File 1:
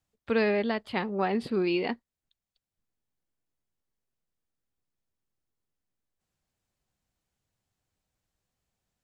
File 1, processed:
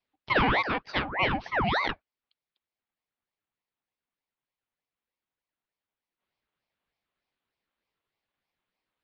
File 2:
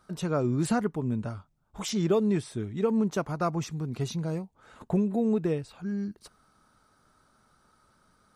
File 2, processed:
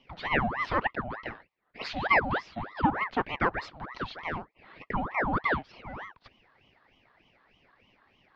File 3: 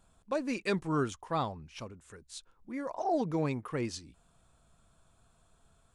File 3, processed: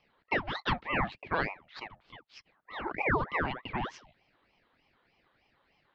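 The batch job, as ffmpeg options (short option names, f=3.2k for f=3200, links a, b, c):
-af "highpass=f=330:t=q:w=0.5412,highpass=f=330:t=q:w=1.307,lowpass=f=3.6k:t=q:w=0.5176,lowpass=f=3.6k:t=q:w=0.7071,lowpass=f=3.6k:t=q:w=1.932,afreqshift=97,aeval=exprs='val(0)*sin(2*PI*930*n/s+930*0.75/3.3*sin(2*PI*3.3*n/s))':c=same,volume=5.5dB"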